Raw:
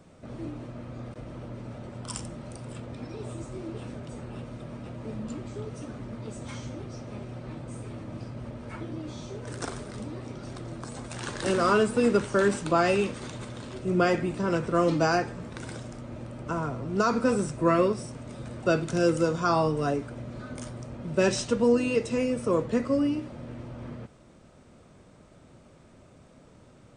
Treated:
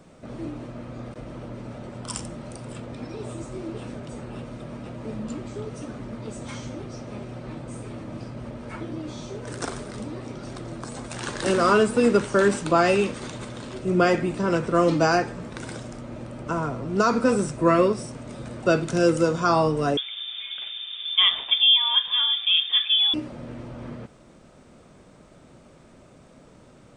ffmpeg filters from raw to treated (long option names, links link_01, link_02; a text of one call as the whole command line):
ffmpeg -i in.wav -filter_complex "[0:a]asettb=1/sr,asplit=3[link_01][link_02][link_03];[link_01]atrim=end=19.974[link_04];[link_02]atrim=start=19.97:end=23.14,asetpts=PTS-STARTPTS,afade=type=in:duration=0.004:curve=qsin,afade=type=out:start_time=3.166:duration=0.004:curve=qsin,lowpass=frequency=3100:width_type=q:width=0.5098,lowpass=frequency=3100:width_type=q:width=0.6013,lowpass=frequency=3100:width_type=q:width=0.9,lowpass=frequency=3100:width_type=q:width=2.563,afreqshift=-3700[link_05];[link_03]atrim=start=23.136[link_06];[link_04][link_05]acrossfade=duration=0.004:curve1=hsin:curve2=qsin[link_07];[link_07][link_06]acrossfade=duration=0.004:curve1=qsin:curve2=hsin,equalizer=frequency=89:width=1.5:gain=-5.5,volume=4dB" out.wav